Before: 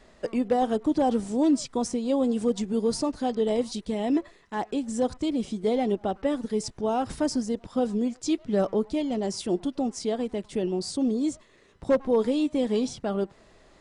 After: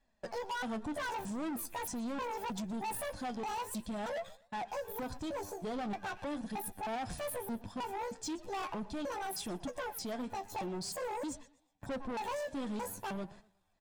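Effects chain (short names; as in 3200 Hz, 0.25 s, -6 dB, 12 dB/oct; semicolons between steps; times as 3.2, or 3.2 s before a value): trilling pitch shifter +11.5 st, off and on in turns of 0.312 s; gate -44 dBFS, range -20 dB; comb 1.2 ms, depth 55%; in parallel at -2 dB: limiter -23 dBFS, peak gain reduction 11.5 dB; on the sum: hard clip -22 dBFS, distortion -10 dB; flange 0.44 Hz, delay 3.5 ms, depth 8.2 ms, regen +57%; soft clip -30 dBFS, distortion -13 dB; warbling echo 0.121 s, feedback 31%, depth 138 cents, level -20 dB; gain -4.5 dB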